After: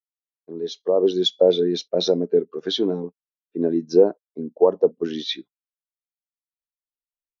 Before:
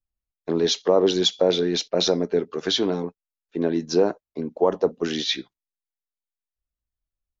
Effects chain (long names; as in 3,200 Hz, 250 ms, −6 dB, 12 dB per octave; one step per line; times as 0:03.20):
fade in at the beginning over 1.41 s
every bin expanded away from the loudest bin 1.5 to 1
level +3.5 dB